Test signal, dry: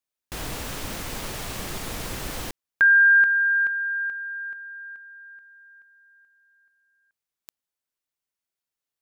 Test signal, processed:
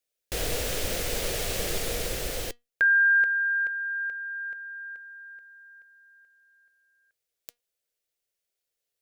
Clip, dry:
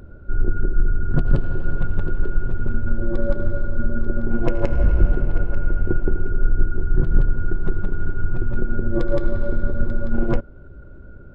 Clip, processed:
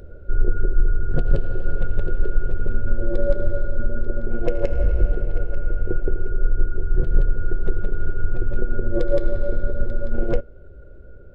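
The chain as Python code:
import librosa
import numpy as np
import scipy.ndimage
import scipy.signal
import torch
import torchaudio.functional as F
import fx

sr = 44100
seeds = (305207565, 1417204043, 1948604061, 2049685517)

y = fx.graphic_eq_10(x, sr, hz=(125, 250, 500, 1000), db=(-4, -9, 9, -12))
y = fx.rider(y, sr, range_db=5, speed_s=2.0)
y = fx.comb_fb(y, sr, f0_hz=240.0, decay_s=0.21, harmonics='all', damping=0.2, mix_pct=40)
y = y * 10.0 ** (3.0 / 20.0)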